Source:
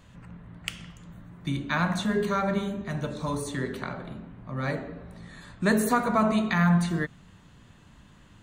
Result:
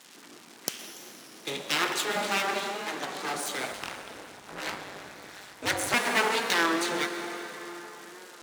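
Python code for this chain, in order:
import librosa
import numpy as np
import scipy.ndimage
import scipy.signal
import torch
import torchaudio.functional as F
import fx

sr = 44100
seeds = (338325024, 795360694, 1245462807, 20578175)

y = fx.dmg_crackle(x, sr, seeds[0], per_s=570.0, level_db=-42.0)
y = scipy.signal.sosfilt(scipy.signal.butter(2, 7800.0, 'lowpass', fs=sr, output='sos'), y)
y = np.abs(y)
y = scipy.signal.sosfilt(scipy.signal.butter(4, 170.0, 'highpass', fs=sr, output='sos'), y)
y = fx.tilt_eq(y, sr, slope=2.5)
y = fx.rev_plate(y, sr, seeds[1], rt60_s=4.8, hf_ratio=0.65, predelay_ms=105, drr_db=6.5)
y = fx.ring_mod(y, sr, carrier_hz=100.0, at=(3.72, 5.94))
y = fx.record_warp(y, sr, rpm=33.33, depth_cents=100.0)
y = y * 10.0 ** (2.0 / 20.0)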